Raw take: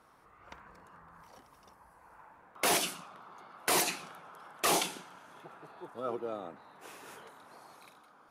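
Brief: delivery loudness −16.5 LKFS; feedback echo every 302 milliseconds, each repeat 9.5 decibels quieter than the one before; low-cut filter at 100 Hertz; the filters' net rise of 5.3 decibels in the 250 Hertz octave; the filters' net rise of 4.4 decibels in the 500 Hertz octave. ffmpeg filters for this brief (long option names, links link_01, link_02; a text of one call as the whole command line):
ffmpeg -i in.wav -af "highpass=100,equalizer=frequency=250:width_type=o:gain=6,equalizer=frequency=500:width_type=o:gain=4,aecho=1:1:302|604|906|1208:0.335|0.111|0.0365|0.012,volume=15dB" out.wav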